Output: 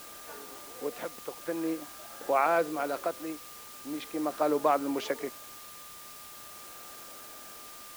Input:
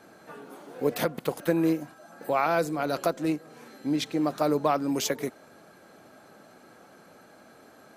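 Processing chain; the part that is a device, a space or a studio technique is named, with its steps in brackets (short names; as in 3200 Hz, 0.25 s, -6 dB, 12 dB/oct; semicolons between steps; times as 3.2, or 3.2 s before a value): shortwave radio (BPF 320–2700 Hz; tremolo 0.42 Hz, depth 69%; whine 1200 Hz -52 dBFS; white noise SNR 14 dB)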